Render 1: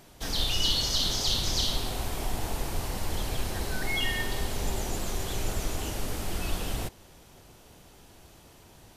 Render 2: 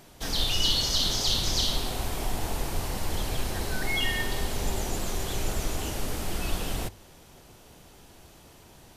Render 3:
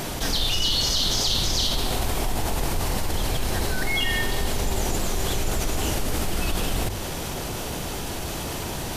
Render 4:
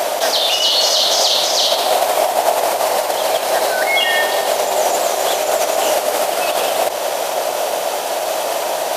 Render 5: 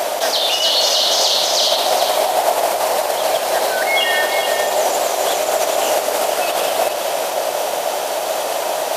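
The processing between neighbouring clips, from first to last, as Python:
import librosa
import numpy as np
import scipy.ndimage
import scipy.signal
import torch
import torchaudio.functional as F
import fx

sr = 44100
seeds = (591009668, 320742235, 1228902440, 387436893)

y1 = fx.hum_notches(x, sr, base_hz=50, count=2)
y1 = F.gain(torch.from_numpy(y1), 1.5).numpy()
y2 = fx.env_flatten(y1, sr, amount_pct=70)
y3 = fx.highpass_res(y2, sr, hz=620.0, q=4.6)
y3 = F.gain(torch.from_numpy(y3), 8.5).numpy()
y4 = y3 + 10.0 ** (-7.5 / 20.0) * np.pad(y3, (int(422 * sr / 1000.0), 0))[:len(y3)]
y4 = F.gain(torch.from_numpy(y4), -1.5).numpy()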